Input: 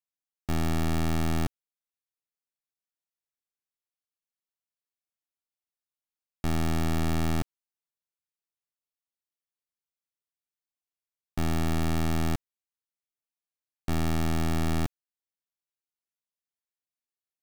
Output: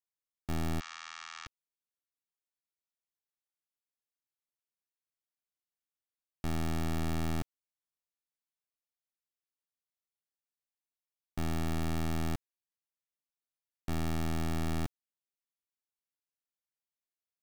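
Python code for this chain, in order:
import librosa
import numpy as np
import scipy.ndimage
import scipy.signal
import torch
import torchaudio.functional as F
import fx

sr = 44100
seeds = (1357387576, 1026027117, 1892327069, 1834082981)

y = fx.ellip_bandpass(x, sr, low_hz=1100.0, high_hz=6700.0, order=3, stop_db=40, at=(0.79, 1.46), fade=0.02)
y = F.gain(torch.from_numpy(y), -6.0).numpy()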